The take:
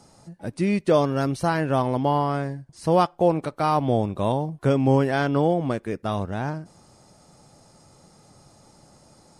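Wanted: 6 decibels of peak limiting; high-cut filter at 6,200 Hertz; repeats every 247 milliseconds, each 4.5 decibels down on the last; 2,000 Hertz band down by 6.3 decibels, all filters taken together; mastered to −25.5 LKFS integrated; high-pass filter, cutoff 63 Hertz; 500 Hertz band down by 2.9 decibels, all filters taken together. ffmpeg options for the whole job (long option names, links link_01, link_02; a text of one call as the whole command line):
ffmpeg -i in.wav -af "highpass=63,lowpass=6200,equalizer=frequency=500:width_type=o:gain=-3,equalizer=frequency=2000:width_type=o:gain=-9,alimiter=limit=-16dB:level=0:latency=1,aecho=1:1:247|494|741|988|1235|1482|1729|1976|2223:0.596|0.357|0.214|0.129|0.0772|0.0463|0.0278|0.0167|0.01,volume=-0.5dB" out.wav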